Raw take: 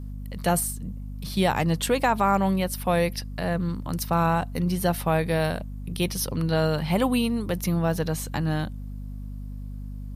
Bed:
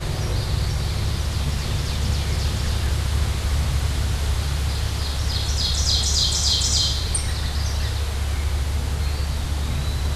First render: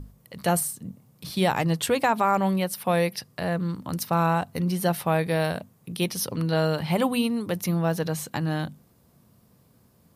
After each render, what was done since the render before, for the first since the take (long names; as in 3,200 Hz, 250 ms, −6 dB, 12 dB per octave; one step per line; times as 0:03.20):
mains-hum notches 50/100/150/200/250 Hz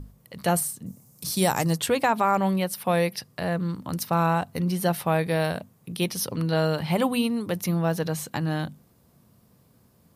0:00.86–0:01.78: high shelf with overshoot 4,600 Hz +11 dB, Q 1.5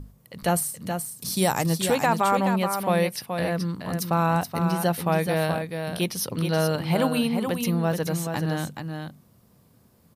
single-tap delay 426 ms −6.5 dB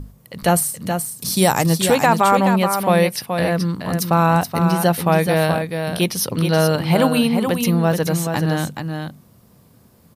level +7 dB